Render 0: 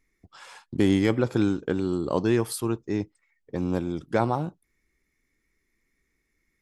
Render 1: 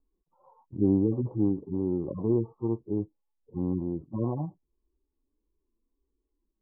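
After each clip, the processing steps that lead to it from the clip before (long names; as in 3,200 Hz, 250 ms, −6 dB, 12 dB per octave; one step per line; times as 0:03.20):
harmonic-percussive split with one part muted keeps harmonic
Butterworth low-pass 1,100 Hz 96 dB per octave
level −1.5 dB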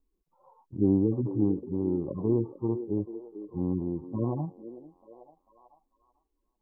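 echo through a band-pass that steps 444 ms, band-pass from 370 Hz, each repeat 0.7 octaves, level −10 dB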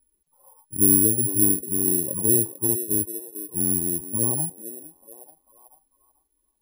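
bad sample-rate conversion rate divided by 4×, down none, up zero stuff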